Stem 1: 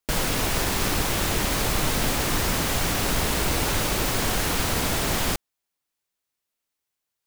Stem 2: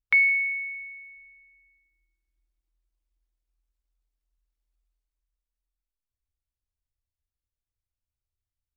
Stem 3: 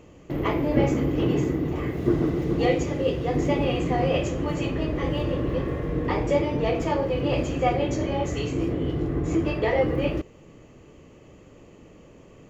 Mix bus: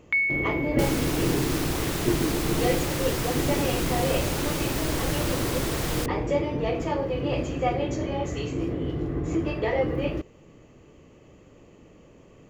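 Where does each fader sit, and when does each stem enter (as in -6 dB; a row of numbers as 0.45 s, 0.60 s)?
-6.0 dB, -4.0 dB, -2.5 dB; 0.70 s, 0.00 s, 0.00 s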